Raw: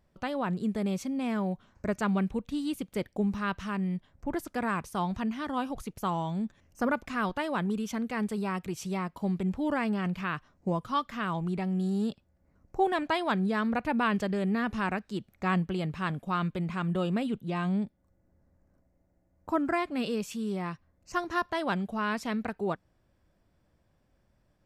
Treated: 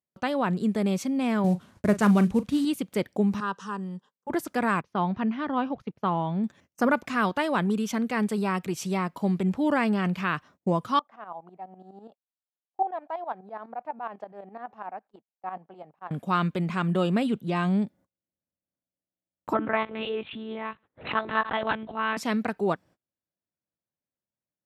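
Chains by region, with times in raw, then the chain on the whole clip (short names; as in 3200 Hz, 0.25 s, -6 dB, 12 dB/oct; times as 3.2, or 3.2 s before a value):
1.44–2.65 CVSD 64 kbps + low shelf 180 Hz +10.5 dB + doubler 39 ms -14 dB
3.4–4.3 speaker cabinet 290–8800 Hz, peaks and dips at 330 Hz -5 dB, 1300 Hz -3 dB, 4200 Hz -6 dB + fixed phaser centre 440 Hz, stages 8
4.81–6.44 gate -40 dBFS, range -14 dB + air absorption 280 m
10.99–16.11 tremolo saw up 12 Hz, depth 75% + band-pass 760 Hz, Q 4.2
19.53–22.17 low shelf 370 Hz -8 dB + monotone LPC vocoder at 8 kHz 220 Hz + backwards sustainer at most 130 dB/s
whole clip: HPF 140 Hz 12 dB/oct; gate -56 dBFS, range -30 dB; gain +5.5 dB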